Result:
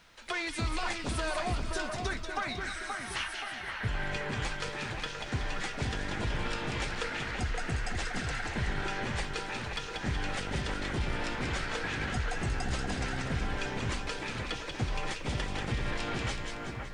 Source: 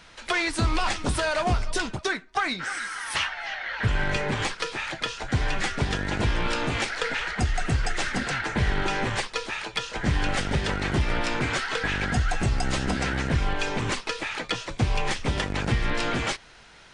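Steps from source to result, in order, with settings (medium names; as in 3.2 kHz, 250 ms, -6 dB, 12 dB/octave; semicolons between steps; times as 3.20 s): bit crusher 11-bit; two-band feedback delay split 2.2 kHz, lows 526 ms, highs 187 ms, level -4.5 dB; trim -9 dB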